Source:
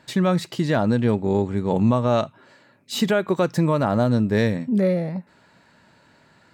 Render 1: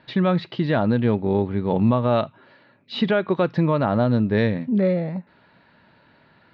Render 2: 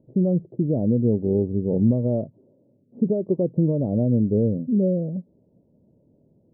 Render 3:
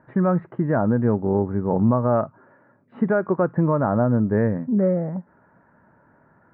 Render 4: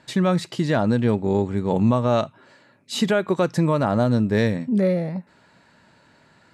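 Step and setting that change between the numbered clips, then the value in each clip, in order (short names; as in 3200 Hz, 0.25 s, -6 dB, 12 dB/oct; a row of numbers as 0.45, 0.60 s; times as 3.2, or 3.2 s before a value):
steep low-pass, frequency: 4100, 540, 1600, 12000 Hz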